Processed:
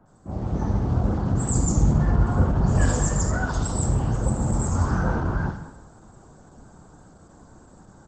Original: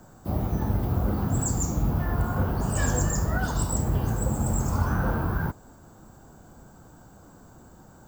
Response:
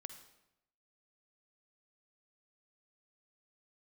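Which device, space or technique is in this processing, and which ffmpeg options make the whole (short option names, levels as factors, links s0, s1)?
speakerphone in a meeting room: -filter_complex "[0:a]asettb=1/sr,asplit=3[s0][s1][s2];[s0]atrim=end=1.554[s3];[s1]atrim=start=1.55:end=2.88,asetpts=PTS-STARTPTS,afade=t=in:d=0.004:c=qsin,afade=t=out:st=1.326:d=0.004:c=qsin,lowshelf=f=390:g=4[s4];[s2]atrim=start=2.876[s5];[s3][s4]acrossfade=d=0.004:c1=hsin:c2=qsin[s6];[s6][s5]acrossfade=d=0.004:c1=qsin:c2=hsin,acrossover=split=2500[s7][s8];[s8]adelay=60[s9];[s7][s9]amix=inputs=2:normalize=0[s10];[1:a]atrim=start_sample=2205[s11];[s10][s11]afir=irnorm=-1:irlink=0,asplit=2[s12][s13];[s13]adelay=200,highpass=300,lowpass=3400,asoftclip=type=hard:threshold=0.0562,volume=0.158[s14];[s12][s14]amix=inputs=2:normalize=0,dynaudnorm=f=300:g=3:m=2.37" -ar 48000 -c:a libopus -b:a 12k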